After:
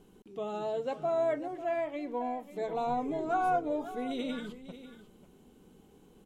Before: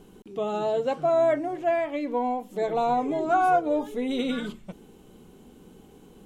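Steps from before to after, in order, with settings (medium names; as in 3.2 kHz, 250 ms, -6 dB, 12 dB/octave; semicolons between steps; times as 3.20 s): 2.87–3.72 s: bass shelf 140 Hz +9.5 dB; on a send: delay 544 ms -14 dB; on the sum: trim -8 dB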